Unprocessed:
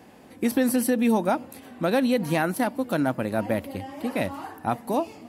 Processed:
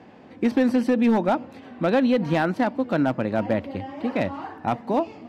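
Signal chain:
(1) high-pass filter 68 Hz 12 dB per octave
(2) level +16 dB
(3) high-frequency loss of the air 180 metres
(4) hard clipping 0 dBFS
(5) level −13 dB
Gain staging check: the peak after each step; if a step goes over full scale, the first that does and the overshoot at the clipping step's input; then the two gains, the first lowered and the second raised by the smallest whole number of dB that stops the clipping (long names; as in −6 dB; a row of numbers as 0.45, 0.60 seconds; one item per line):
−10.5, +5.5, +5.0, 0.0, −13.0 dBFS
step 2, 5.0 dB
step 2 +11 dB, step 5 −8 dB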